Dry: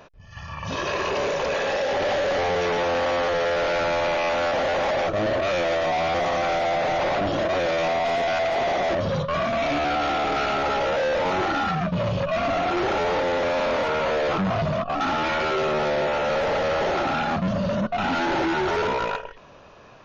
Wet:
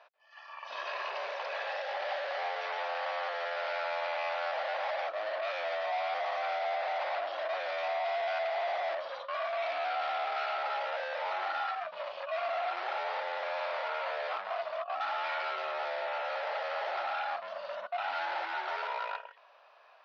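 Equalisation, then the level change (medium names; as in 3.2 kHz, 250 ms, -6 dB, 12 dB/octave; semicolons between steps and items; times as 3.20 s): elliptic band-pass 660–4900 Hz, stop band 80 dB; distance through air 82 m; -8.0 dB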